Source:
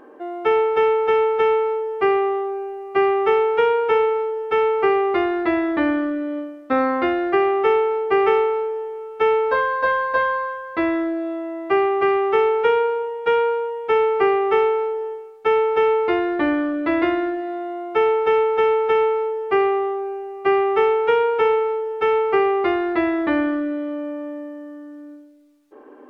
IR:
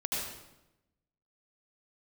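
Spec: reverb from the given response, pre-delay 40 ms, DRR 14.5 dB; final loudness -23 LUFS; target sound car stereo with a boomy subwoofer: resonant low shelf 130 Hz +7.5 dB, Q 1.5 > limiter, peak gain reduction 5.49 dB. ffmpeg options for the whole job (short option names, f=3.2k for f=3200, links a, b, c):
-filter_complex "[0:a]asplit=2[a][b];[1:a]atrim=start_sample=2205,adelay=40[c];[b][c]afir=irnorm=-1:irlink=0,volume=-20dB[d];[a][d]amix=inputs=2:normalize=0,lowshelf=f=130:t=q:w=1.5:g=7.5,volume=-1dB,alimiter=limit=-14dB:level=0:latency=1"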